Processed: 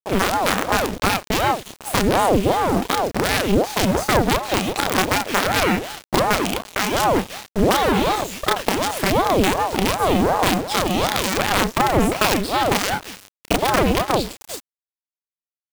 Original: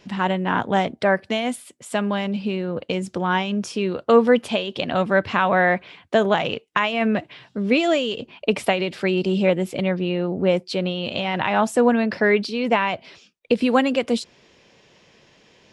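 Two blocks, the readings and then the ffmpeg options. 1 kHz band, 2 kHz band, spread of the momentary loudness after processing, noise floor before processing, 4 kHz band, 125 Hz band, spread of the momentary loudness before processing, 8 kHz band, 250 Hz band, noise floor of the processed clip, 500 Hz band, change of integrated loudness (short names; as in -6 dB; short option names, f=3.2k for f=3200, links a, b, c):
+5.0 dB, +1.5 dB, 5 LU, -57 dBFS, +5.5 dB, +3.5 dB, 8 LU, +14.0 dB, 0.0 dB, under -85 dBFS, -0.5 dB, +2.0 dB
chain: -filter_complex "[0:a]bandreject=f=60:t=h:w=6,bandreject=f=120:t=h:w=6,bandreject=f=180:t=h:w=6,bandreject=f=240:t=h:w=6,bandreject=f=300:t=h:w=6,acrossover=split=5200[a][b];[b]adelay=330[c];[a][c]amix=inputs=2:normalize=0,acompressor=threshold=-22dB:ratio=16,acrusher=bits=4:dc=4:mix=0:aa=0.000001,asplit=2[d][e];[e]adelay=30,volume=-3.5dB[f];[d][f]amix=inputs=2:normalize=0,alimiter=level_in=16dB:limit=-1dB:release=50:level=0:latency=1,aeval=exprs='val(0)*sin(2*PI*520*n/s+520*0.65/2.7*sin(2*PI*2.7*n/s))':c=same,volume=-3dB"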